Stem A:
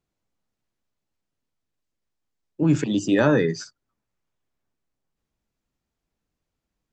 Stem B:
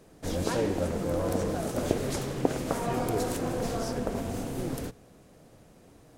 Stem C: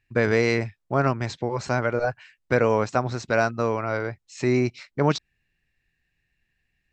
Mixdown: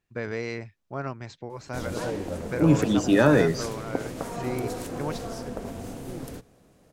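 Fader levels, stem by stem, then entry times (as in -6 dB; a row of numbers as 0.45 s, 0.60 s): 0.0 dB, -3.5 dB, -11.0 dB; 0.00 s, 1.50 s, 0.00 s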